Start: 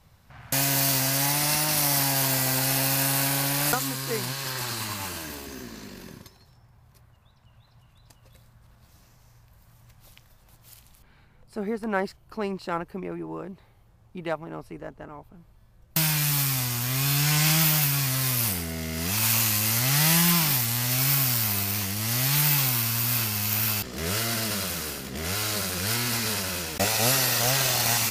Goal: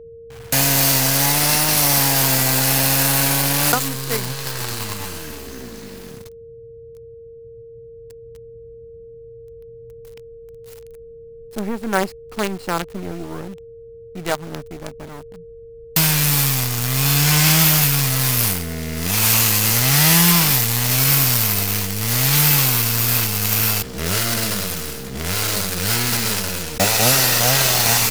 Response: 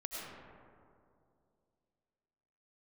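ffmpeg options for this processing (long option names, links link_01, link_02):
-filter_complex "[0:a]acrossover=split=230[link_01][link_02];[link_02]acrusher=bits=5:dc=4:mix=0:aa=0.000001[link_03];[link_01][link_03]amix=inputs=2:normalize=0,aeval=exprs='val(0)+0.00631*sin(2*PI*460*n/s)':channel_layout=same,volume=7dB"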